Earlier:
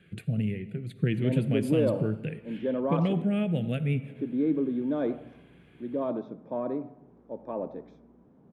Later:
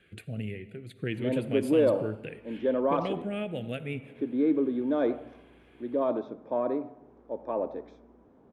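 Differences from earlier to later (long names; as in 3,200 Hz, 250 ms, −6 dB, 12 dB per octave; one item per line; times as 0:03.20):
background +4.5 dB
master: add parametric band 160 Hz −13.5 dB 1 octave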